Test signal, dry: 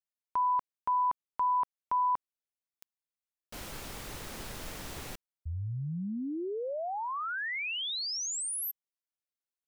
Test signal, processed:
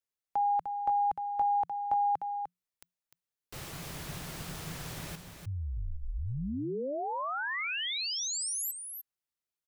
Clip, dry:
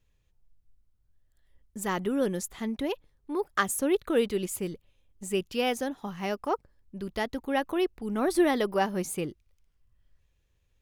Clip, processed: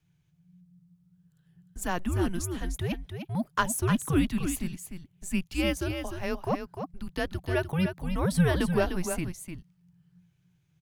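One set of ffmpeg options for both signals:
-filter_complex "[0:a]asplit=2[a][b];[b]aecho=0:1:301:0.422[c];[a][c]amix=inputs=2:normalize=0,afreqshift=-180"

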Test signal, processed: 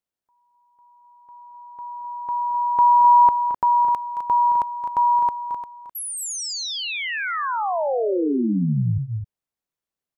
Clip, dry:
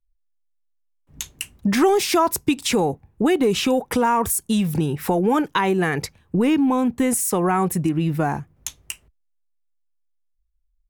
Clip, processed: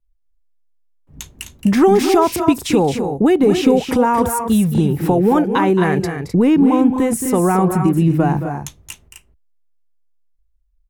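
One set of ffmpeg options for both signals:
-filter_complex "[0:a]tiltshelf=f=1.2k:g=4.5,asplit=2[a][b];[b]aecho=0:1:221|257:0.299|0.398[c];[a][c]amix=inputs=2:normalize=0,volume=1.5dB"

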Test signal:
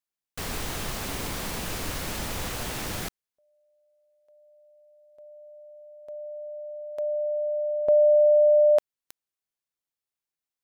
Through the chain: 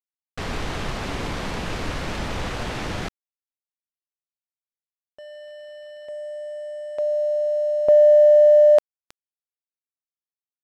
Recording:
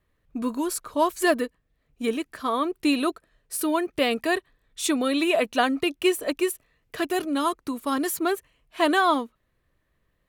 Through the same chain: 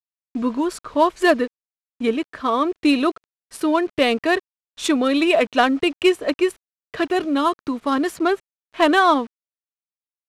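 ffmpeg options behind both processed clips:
-af "acrusher=bits=7:mix=0:aa=0.000001,adynamicsmooth=sensitivity=2.5:basefreq=3.6k,aresample=32000,aresample=44100,volume=5.5dB"

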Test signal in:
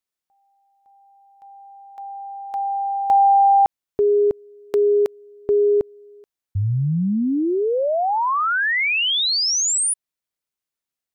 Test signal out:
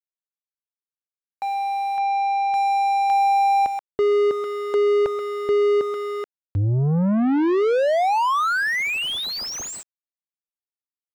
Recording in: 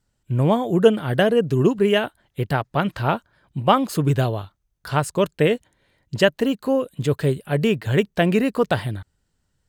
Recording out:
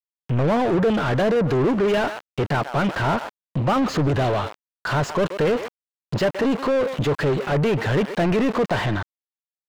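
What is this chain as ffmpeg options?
-filter_complex "[0:a]aresample=16000,asoftclip=type=tanh:threshold=-14.5dB,aresample=44100,asplit=2[a][b];[b]adelay=130,highpass=300,lowpass=3.4k,asoftclip=type=hard:threshold=-23.5dB,volume=-21dB[c];[a][c]amix=inputs=2:normalize=0,aeval=exprs='val(0)*gte(abs(val(0)),0.00531)':c=same,asplit=2[d][e];[e]highpass=f=720:p=1,volume=32dB,asoftclip=type=tanh:threshold=-13.5dB[f];[d][f]amix=inputs=2:normalize=0,lowpass=f=1.2k:p=1,volume=-6dB"

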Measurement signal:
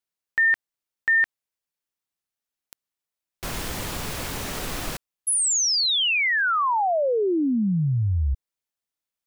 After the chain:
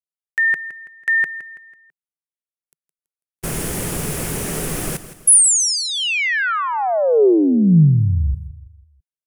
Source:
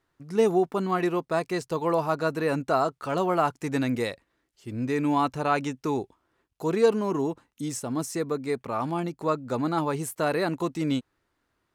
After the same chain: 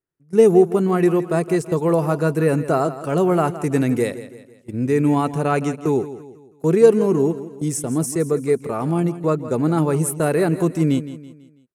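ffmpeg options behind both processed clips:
-filter_complex "[0:a]agate=range=-21dB:threshold=-33dB:ratio=16:release=191:detection=rms,equalizer=f=160:t=o:w=0.67:g=9,equalizer=f=400:t=o:w=0.67:g=7,equalizer=f=1k:t=o:w=0.67:g=-4,equalizer=f=4k:t=o:w=0.67:g=-7,equalizer=f=10k:t=o:w=0.67:g=10,asplit=2[a][b];[b]aecho=0:1:165|330|495|660:0.2|0.0858|0.0369|0.0159[c];[a][c]amix=inputs=2:normalize=0,volume=3.5dB"

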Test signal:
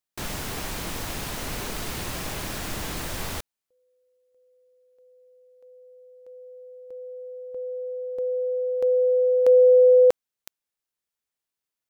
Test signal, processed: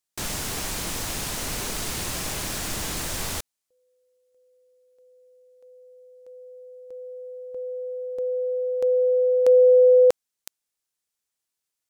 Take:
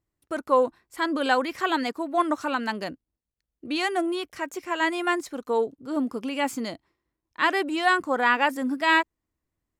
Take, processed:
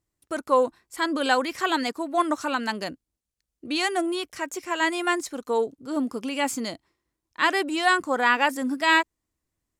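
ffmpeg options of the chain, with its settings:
-af "equalizer=f=7.8k:t=o:w=1.8:g=7"

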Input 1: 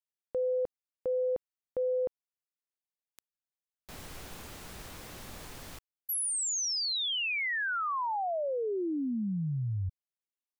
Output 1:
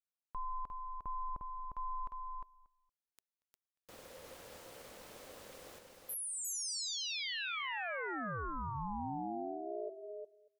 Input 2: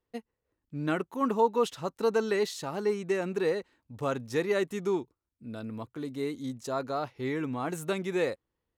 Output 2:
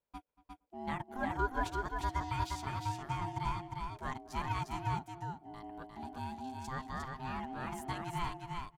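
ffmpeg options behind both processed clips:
-filter_complex "[0:a]equalizer=f=130:t=o:w=0.26:g=-6.5,aeval=exprs='val(0)*sin(2*PI*520*n/s)':c=same,asplit=2[a][b];[b]adelay=233,lowpass=f=2.4k:p=1,volume=-20dB,asplit=2[c][d];[d]adelay=233,lowpass=f=2.4k:p=1,volume=0.2[e];[c][e]amix=inputs=2:normalize=0[f];[a][f]amix=inputs=2:normalize=0,aeval=exprs='0.2*(cos(1*acos(clip(val(0)/0.2,-1,1)))-cos(1*PI/2))+0.00631*(cos(2*acos(clip(val(0)/0.2,-1,1)))-cos(2*PI/2))':c=same,asplit=2[g][h];[h]aecho=0:1:354:0.631[i];[g][i]amix=inputs=2:normalize=0,volume=-6dB"

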